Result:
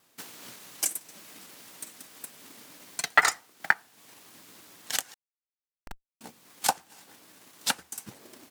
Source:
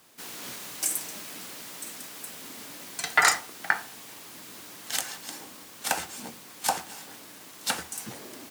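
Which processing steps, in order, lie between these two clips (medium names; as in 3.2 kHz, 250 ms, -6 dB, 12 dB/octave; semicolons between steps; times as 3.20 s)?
transient shaper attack +10 dB, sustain -8 dB; 5.14–6.21 s: Schmitt trigger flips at -8.5 dBFS; vibrato 10 Hz 75 cents; trim -7.5 dB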